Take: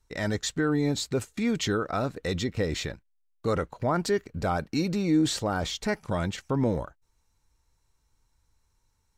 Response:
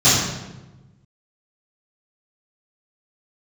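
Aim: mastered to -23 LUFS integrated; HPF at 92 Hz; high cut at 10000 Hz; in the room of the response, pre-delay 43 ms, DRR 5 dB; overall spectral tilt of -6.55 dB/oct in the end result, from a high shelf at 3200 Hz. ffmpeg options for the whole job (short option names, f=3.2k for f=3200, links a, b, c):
-filter_complex "[0:a]highpass=92,lowpass=10k,highshelf=f=3.2k:g=-7,asplit=2[a][b];[1:a]atrim=start_sample=2205,adelay=43[c];[b][c]afir=irnorm=-1:irlink=0,volume=-28dB[d];[a][d]amix=inputs=2:normalize=0,volume=3dB"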